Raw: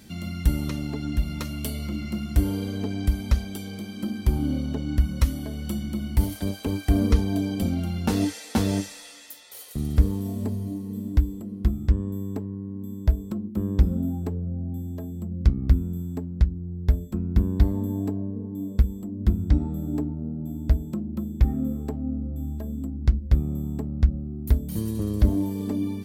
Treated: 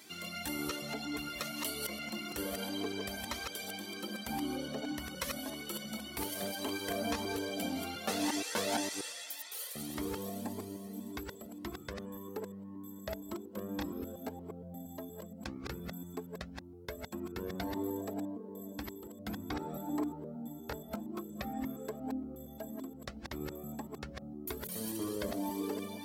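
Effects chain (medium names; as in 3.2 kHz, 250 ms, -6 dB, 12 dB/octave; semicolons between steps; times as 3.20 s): chunks repeated in reverse 117 ms, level -3.5 dB; high-pass 450 Hz 12 dB/octave; 19.34–21.21 s: dynamic bell 1 kHz, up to +5 dB, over -51 dBFS, Q 0.79; in parallel at 0 dB: peak limiter -26.5 dBFS, peak gain reduction 11 dB; on the sum: Shepard-style flanger rising 1.8 Hz; trim -2 dB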